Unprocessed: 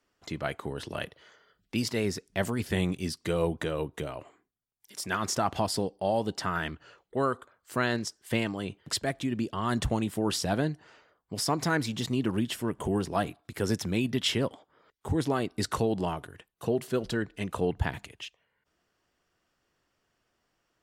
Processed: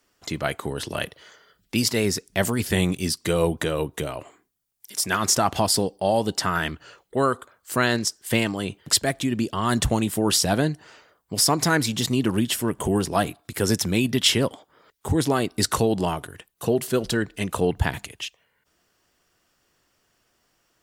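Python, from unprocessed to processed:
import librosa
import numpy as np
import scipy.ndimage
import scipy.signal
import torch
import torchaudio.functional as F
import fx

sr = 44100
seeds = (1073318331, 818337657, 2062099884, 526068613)

y = fx.high_shelf(x, sr, hz=5300.0, db=10.0)
y = y * 10.0 ** (6.0 / 20.0)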